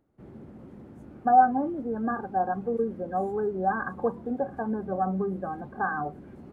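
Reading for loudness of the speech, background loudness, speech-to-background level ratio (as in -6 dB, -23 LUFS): -28.0 LUFS, -47.0 LUFS, 19.0 dB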